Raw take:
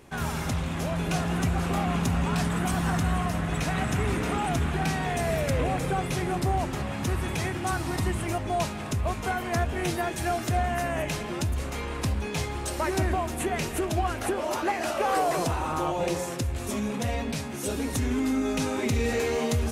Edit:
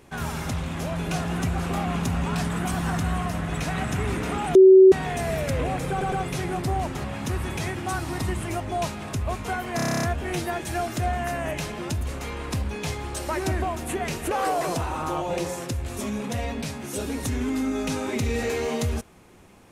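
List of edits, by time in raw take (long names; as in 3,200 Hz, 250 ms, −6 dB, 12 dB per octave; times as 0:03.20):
0:04.55–0:04.92: beep over 379 Hz −7.5 dBFS
0:05.90: stutter 0.11 s, 3 plays
0:09.54: stutter 0.03 s, 10 plays
0:13.82–0:15.01: remove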